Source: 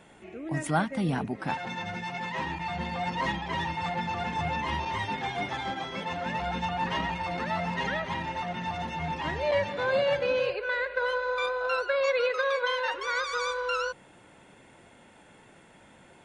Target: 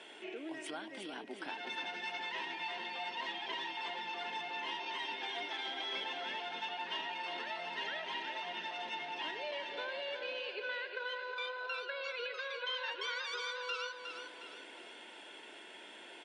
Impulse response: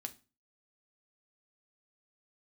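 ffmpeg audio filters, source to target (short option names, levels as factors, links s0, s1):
-af "acompressor=threshold=0.00891:ratio=6,highpass=f=360:w=0.5412,highpass=f=360:w=1.3066,equalizer=f=530:t=q:w=4:g=-9,equalizer=f=790:t=q:w=4:g=-7,equalizer=f=1200:t=q:w=4:g=-10,equalizer=f=2000:t=q:w=4:g=-3,equalizer=f=3100:t=q:w=4:g=7,equalizer=f=6900:t=q:w=4:g=-9,lowpass=f=8200:w=0.5412,lowpass=f=8200:w=1.3066,aecho=1:1:361|722|1083|1444|1805:0.447|0.192|0.0826|0.0355|0.0153,volume=2"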